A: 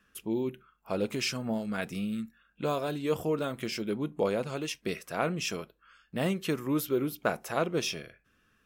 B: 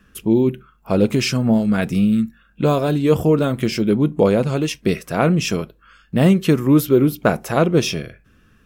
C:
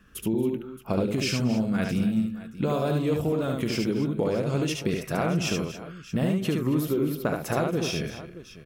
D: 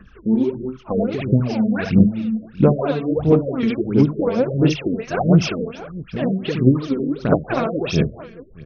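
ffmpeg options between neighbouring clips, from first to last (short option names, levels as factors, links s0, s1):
-af "lowshelf=f=330:g=11.5,volume=2.82"
-filter_complex "[0:a]acompressor=threshold=0.1:ratio=6,asplit=2[s0][s1];[s1]aecho=0:1:73|231|273|623:0.668|0.106|0.2|0.158[s2];[s0][s2]amix=inputs=2:normalize=0,volume=0.668"
-af "aphaser=in_gain=1:out_gain=1:delay=4.5:decay=0.75:speed=1.5:type=sinusoidal,afftfilt=real='re*lt(b*sr/1024,610*pow(6700/610,0.5+0.5*sin(2*PI*2.8*pts/sr)))':imag='im*lt(b*sr/1024,610*pow(6700/610,0.5+0.5*sin(2*PI*2.8*pts/sr)))':win_size=1024:overlap=0.75,volume=1.33"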